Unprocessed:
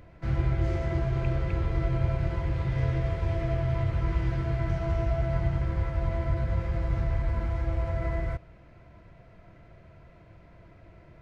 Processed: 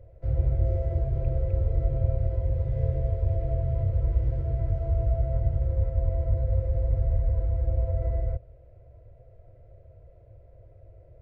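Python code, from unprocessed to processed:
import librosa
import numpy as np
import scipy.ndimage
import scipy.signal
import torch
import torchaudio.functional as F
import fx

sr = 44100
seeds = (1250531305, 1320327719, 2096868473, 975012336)

y = fx.curve_eq(x, sr, hz=(110.0, 220.0, 520.0, 1000.0), db=(0, -28, 3, -22))
y = y * 10.0 ** (3.5 / 20.0)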